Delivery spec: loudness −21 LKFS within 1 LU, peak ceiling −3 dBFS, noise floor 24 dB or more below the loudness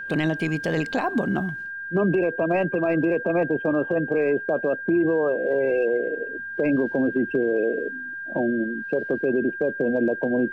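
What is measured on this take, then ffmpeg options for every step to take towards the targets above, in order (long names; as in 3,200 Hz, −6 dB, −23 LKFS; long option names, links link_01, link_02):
interfering tone 1,600 Hz; level of the tone −31 dBFS; integrated loudness −24.0 LKFS; sample peak −13.5 dBFS; target loudness −21.0 LKFS
→ -af "bandreject=frequency=1600:width=30"
-af "volume=3dB"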